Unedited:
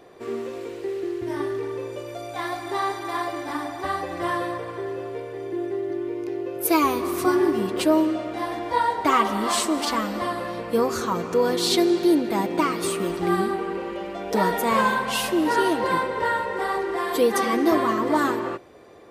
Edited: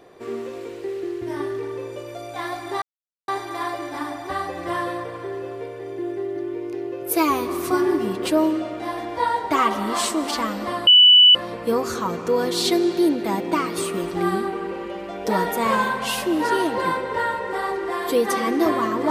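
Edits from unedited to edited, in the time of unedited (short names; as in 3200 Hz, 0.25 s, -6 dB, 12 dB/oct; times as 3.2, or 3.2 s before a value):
2.82 insert silence 0.46 s
10.41 add tone 2970 Hz -7.5 dBFS 0.48 s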